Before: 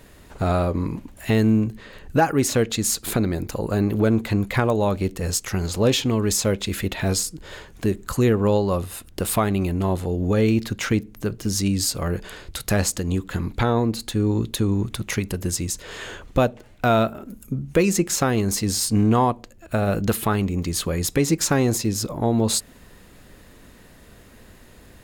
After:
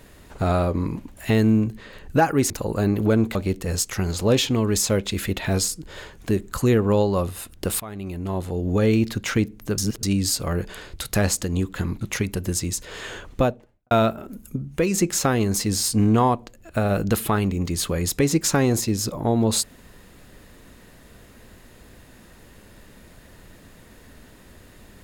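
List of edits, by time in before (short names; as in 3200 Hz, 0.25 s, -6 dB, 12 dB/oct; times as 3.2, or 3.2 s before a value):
2.5–3.44 cut
4.29–4.9 cut
9.35–10.32 fade in, from -19.5 dB
11.33–11.58 reverse
13.56–14.98 cut
16.25–16.88 studio fade out
17.53–17.91 gain -3.5 dB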